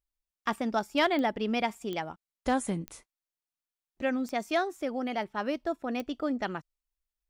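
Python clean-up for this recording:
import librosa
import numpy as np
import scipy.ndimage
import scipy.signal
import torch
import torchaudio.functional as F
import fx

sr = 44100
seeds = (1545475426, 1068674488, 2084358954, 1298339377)

y = fx.fix_declip(x, sr, threshold_db=-16.5)
y = fx.fix_declick_ar(y, sr, threshold=10.0)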